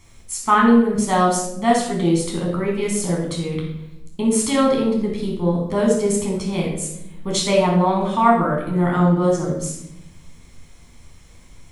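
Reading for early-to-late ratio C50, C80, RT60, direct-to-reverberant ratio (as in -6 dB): 3.0 dB, 6.5 dB, 0.80 s, -2.5 dB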